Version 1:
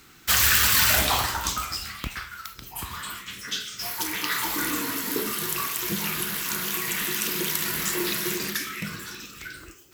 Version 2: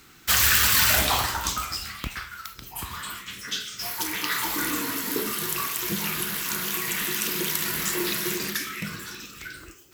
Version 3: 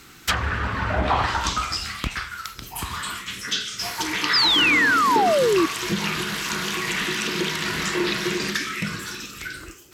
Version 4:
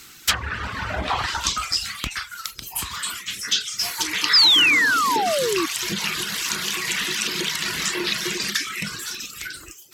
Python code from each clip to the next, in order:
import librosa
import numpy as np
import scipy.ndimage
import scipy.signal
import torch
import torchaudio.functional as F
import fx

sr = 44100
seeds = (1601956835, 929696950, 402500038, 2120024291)

y1 = x
y2 = fx.env_lowpass_down(y1, sr, base_hz=990.0, full_db=-16.5)
y2 = fx.spec_paint(y2, sr, seeds[0], shape='fall', start_s=4.33, length_s=1.33, low_hz=310.0, high_hz=5300.0, level_db=-24.0)
y2 = y2 * 10.0 ** (5.5 / 20.0)
y3 = fx.high_shelf(y2, sr, hz=2200.0, db=12.0)
y3 = fx.dereverb_blind(y3, sr, rt60_s=0.58)
y3 = y3 * 10.0 ** (-4.5 / 20.0)